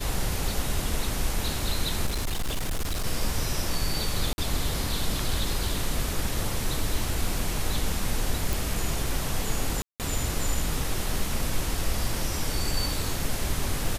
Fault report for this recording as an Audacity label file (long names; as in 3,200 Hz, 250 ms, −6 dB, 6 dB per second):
2.060000	3.060000	clipping −24 dBFS
4.330000	4.380000	drop-out 51 ms
8.530000	8.530000	click
9.820000	10.000000	drop-out 178 ms